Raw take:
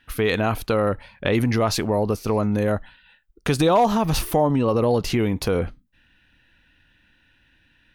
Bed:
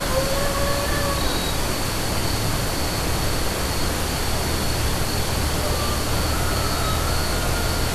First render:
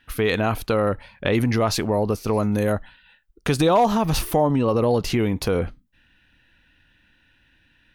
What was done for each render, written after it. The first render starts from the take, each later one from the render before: 2.33–2.73 s: treble shelf 7 kHz +11 dB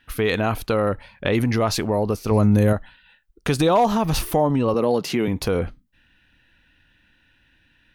2.31–2.73 s: bass shelf 200 Hz +11 dB; 4.74–5.28 s: high-pass 150 Hz 24 dB/octave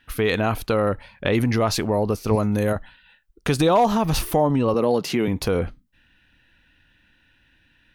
2.35–2.76 s: bass shelf 260 Hz -9 dB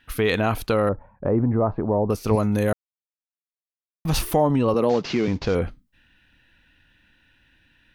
0.89–2.10 s: low-pass 1.1 kHz 24 dB/octave; 2.73–4.05 s: mute; 4.89–5.55 s: CVSD coder 32 kbps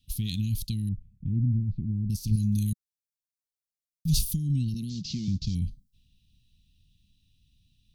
inverse Chebyshev band-stop 550–1400 Hz, stop band 70 dB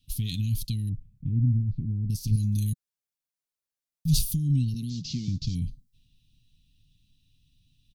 comb 7.4 ms, depth 41%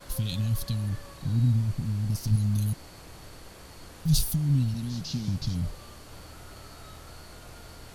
add bed -24 dB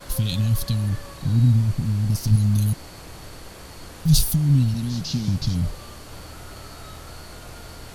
trim +6.5 dB

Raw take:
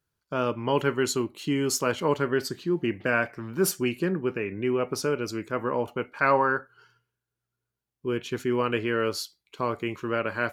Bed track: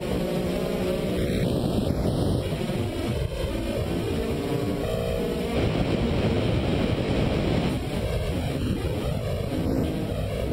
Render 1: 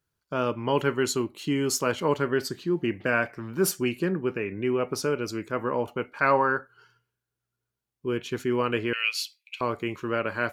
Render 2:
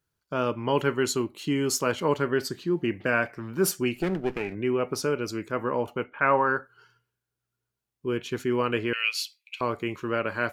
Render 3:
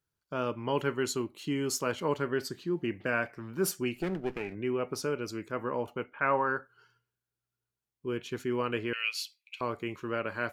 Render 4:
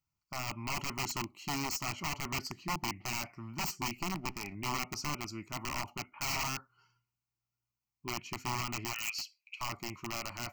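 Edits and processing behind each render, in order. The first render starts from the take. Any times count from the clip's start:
8.93–9.61 s: resonant high-pass 2.5 kHz, resonance Q 11
3.95–4.55 s: comb filter that takes the minimum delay 0.4 ms; 6.04–6.47 s: elliptic low-pass 3.2 kHz
trim -5.5 dB
integer overflow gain 26 dB; static phaser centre 2.4 kHz, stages 8

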